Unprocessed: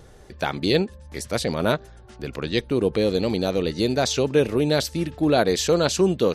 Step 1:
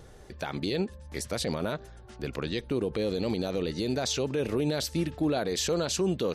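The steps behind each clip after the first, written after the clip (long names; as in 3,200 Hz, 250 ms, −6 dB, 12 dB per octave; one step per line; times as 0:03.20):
brickwall limiter −17 dBFS, peak gain reduction 11.5 dB
level −2.5 dB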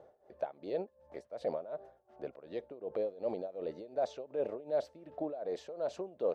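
amplitude tremolo 2.7 Hz, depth 87%
resonant band-pass 620 Hz, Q 4.2
level +6 dB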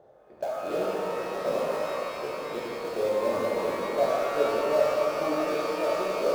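in parallel at −10.5 dB: bit-depth reduction 6 bits, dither none
on the sum: reverb with rising layers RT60 4 s, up +12 semitones, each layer −8 dB, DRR −7.5 dB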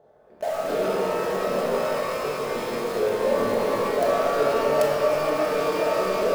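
in parallel at −9 dB: log-companded quantiser 2 bits
on the sum: rectangular room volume 780 cubic metres, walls mixed, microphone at 1.5 metres
level −2 dB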